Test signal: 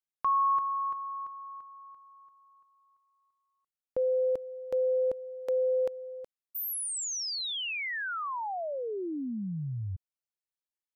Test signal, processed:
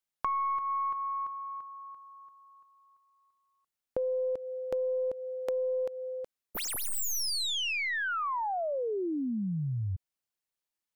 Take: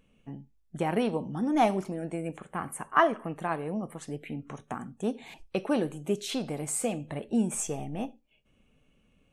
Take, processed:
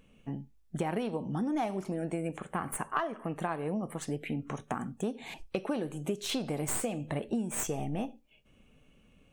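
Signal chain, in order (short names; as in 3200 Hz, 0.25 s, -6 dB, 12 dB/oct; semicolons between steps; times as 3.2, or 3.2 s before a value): tracing distortion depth 0.045 ms; compressor 8:1, threshold -33 dBFS; gain +4 dB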